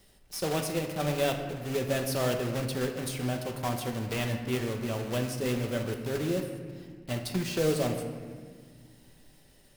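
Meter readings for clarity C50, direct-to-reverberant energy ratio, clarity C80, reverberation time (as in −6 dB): 6.5 dB, 3.0 dB, 8.0 dB, 1.8 s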